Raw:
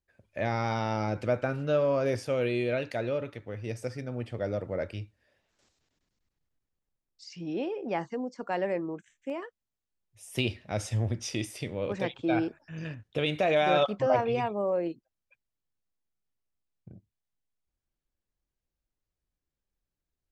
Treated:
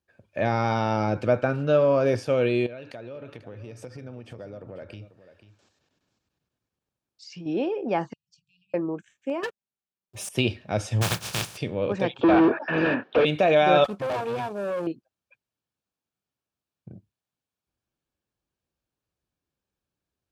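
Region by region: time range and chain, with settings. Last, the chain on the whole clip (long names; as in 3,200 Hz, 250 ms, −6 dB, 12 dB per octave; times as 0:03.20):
0:02.66–0:07.46: downward compressor 12 to 1, threshold −41 dBFS + single-tap delay 492 ms −14 dB
0:08.13–0:08.74: high-shelf EQ 4,300 Hz −9 dB + downward compressor 20 to 1, threshold −44 dBFS + linear-phase brick-wall band-stop 160–2,400 Hz
0:09.43–0:10.29: leveller curve on the samples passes 5 + comb filter 5.1 ms, depth 45%
0:11.01–0:11.56: compressing power law on the bin magnitudes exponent 0.16 + low shelf with overshoot 200 Hz +6.5 dB, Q 3
0:12.21–0:13.25: high-pass filter 230 Hz 24 dB per octave + mid-hump overdrive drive 37 dB, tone 1,400 Hz, clips at −15.5 dBFS + high-frequency loss of the air 290 metres
0:13.84–0:14.87: variable-slope delta modulation 64 kbit/s + tube saturation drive 31 dB, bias 0.8
whole clip: high-pass filter 89 Hz; high-shelf EQ 6,200 Hz −9 dB; notch filter 2,000 Hz, Q 8; level +6 dB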